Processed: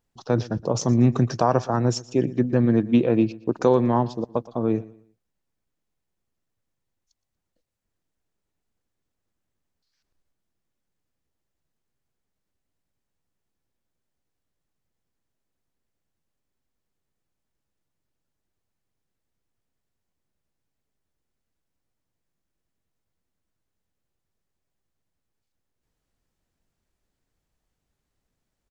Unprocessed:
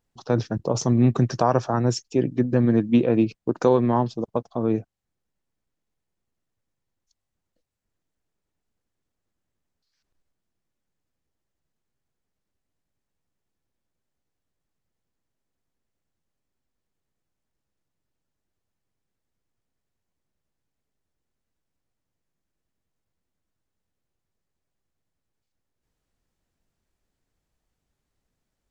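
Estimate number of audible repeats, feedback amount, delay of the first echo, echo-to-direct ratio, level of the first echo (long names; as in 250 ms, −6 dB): 2, 32%, 118 ms, −19.5 dB, −20.0 dB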